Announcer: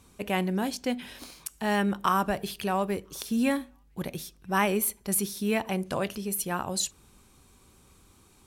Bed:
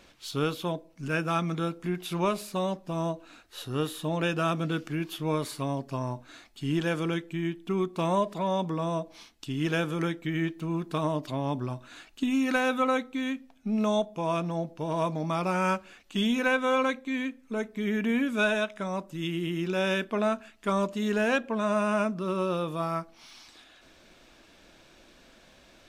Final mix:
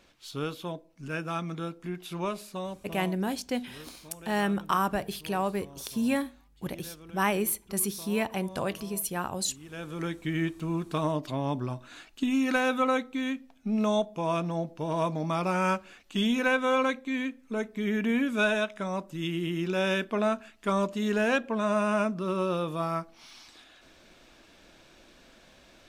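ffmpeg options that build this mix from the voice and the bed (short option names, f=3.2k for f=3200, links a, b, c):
-filter_complex "[0:a]adelay=2650,volume=-1.5dB[a];[1:a]volume=14.5dB,afade=t=out:st=2.45:d=0.92:silence=0.188365,afade=t=in:st=9.68:d=0.61:silence=0.105925[b];[a][b]amix=inputs=2:normalize=0"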